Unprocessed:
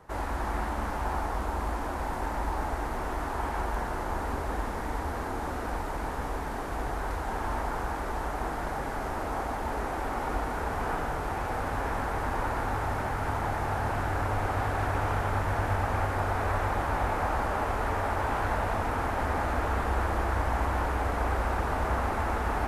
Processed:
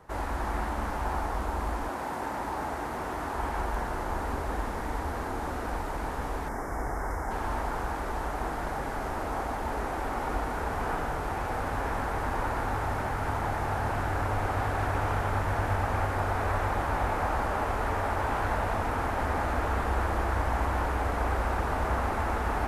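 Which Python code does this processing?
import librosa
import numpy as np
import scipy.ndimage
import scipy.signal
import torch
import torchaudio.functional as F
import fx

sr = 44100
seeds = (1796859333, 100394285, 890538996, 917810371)

y = fx.highpass(x, sr, hz=fx.line((1.88, 150.0), (3.35, 66.0)), slope=12, at=(1.88, 3.35), fade=0.02)
y = fx.spec_box(y, sr, start_s=6.48, length_s=0.83, low_hz=2300.0, high_hz=4900.0, gain_db=-17)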